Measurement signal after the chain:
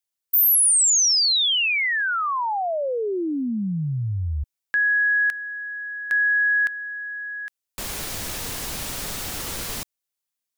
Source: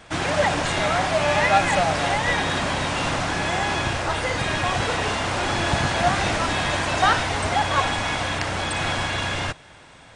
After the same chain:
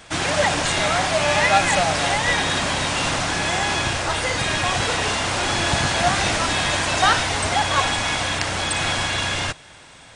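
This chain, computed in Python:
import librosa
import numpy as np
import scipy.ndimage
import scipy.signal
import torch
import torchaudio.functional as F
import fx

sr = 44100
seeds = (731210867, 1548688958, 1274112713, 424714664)

y = fx.high_shelf(x, sr, hz=3100.0, db=8.5)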